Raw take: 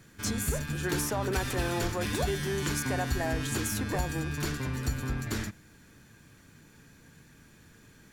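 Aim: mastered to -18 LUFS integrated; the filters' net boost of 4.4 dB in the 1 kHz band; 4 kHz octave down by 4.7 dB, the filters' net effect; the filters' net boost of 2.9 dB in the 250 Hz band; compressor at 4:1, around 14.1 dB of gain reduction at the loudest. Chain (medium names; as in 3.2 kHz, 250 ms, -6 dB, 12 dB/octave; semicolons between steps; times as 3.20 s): peaking EQ 250 Hz +3.5 dB; peaking EQ 1 kHz +6 dB; peaking EQ 4 kHz -6.5 dB; compression 4:1, threshold -41 dBFS; trim +24 dB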